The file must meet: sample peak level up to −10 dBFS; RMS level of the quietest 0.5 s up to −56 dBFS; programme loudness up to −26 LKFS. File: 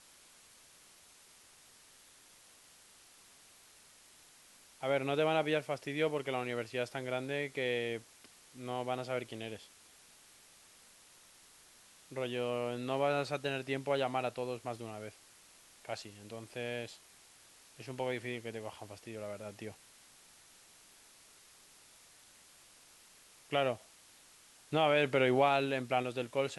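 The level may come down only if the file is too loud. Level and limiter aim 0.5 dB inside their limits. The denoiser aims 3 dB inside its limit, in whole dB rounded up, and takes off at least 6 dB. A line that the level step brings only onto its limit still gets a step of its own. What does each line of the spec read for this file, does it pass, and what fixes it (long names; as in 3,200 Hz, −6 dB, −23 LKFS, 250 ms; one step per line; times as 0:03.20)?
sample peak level −15.5 dBFS: in spec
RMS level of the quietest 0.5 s −61 dBFS: in spec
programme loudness −35.5 LKFS: in spec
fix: no processing needed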